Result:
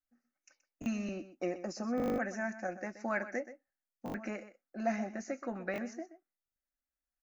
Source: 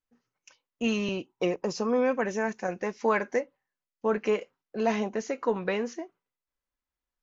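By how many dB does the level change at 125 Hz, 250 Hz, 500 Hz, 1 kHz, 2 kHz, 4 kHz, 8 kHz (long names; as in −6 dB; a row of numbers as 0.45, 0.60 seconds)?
−6.5 dB, −6.0 dB, −11.0 dB, −8.5 dB, −6.0 dB, −14.5 dB, can't be measured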